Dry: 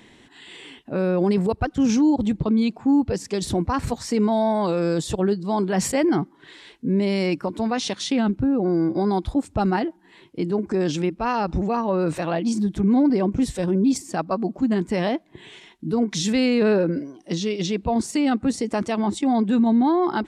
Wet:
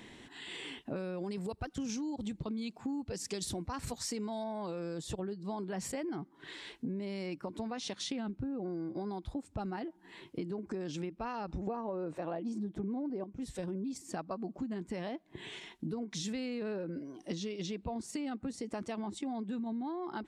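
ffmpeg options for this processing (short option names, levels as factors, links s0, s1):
-filter_complex "[0:a]asettb=1/sr,asplit=3[s0][s1][s2];[s0]atrim=end=0.964[s3];[s1]atrim=start=0.96:end=4.44,asetpts=PTS-STARTPTS,afade=t=in:d=0.004:c=qsin,afade=t=out:st=3.476:d=0.004:c=qsin,highshelf=f=2900:g=10.5[s4];[s2]atrim=start=4.436[s5];[s3][s4]acrossfade=d=0.004:c1=hsin:c2=qsin[s6];[s6][s5]acrossfade=d=0.004:c1=qsin:c2=hsin,asettb=1/sr,asplit=3[s7][s8][s9];[s7]atrim=end=11.674[s10];[s8]atrim=start=11.67:end=13.24,asetpts=PTS-STARTPTS,afade=t=in:d=0.004:c=qsin,afade=t=out:st=1.566:d=0.004:c=qsin,equalizer=f=480:w=0.31:g=13.5[s11];[s9]atrim=start=13.236[s12];[s10][s11]acrossfade=d=0.004:c1=hsin:c2=qsin[s13];[s13][s12]acrossfade=d=0.004:c1=qsin:c2=hsin,acompressor=threshold=0.0224:ratio=16,volume=0.794"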